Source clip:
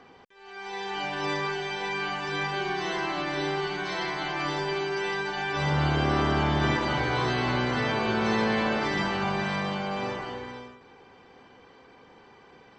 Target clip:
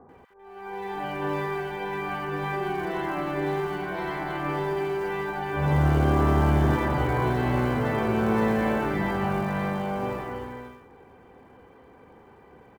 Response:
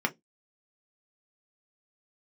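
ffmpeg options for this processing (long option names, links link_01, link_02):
-filter_complex "[0:a]lowpass=1600,equalizer=frequency=67:width=1.4:gain=7,asplit=2[link_01][link_02];[link_02]acrusher=bits=4:mode=log:mix=0:aa=0.000001,volume=-8.5dB[link_03];[link_01][link_03]amix=inputs=2:normalize=0,acrossover=split=1200[link_04][link_05];[link_05]adelay=90[link_06];[link_04][link_06]amix=inputs=2:normalize=0"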